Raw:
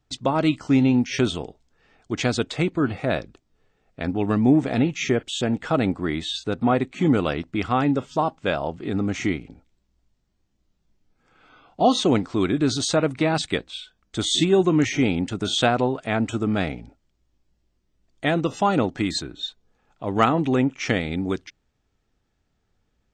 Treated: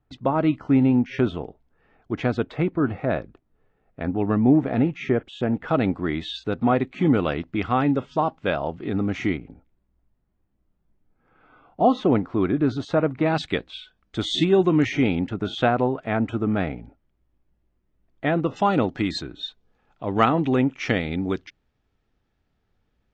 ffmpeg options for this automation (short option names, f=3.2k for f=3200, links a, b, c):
-af "asetnsamples=n=441:p=0,asendcmd='5.68 lowpass f 3300;9.37 lowpass f 1700;13.26 lowpass f 3500;15.27 lowpass f 2100;18.56 lowpass f 4100',lowpass=1.8k"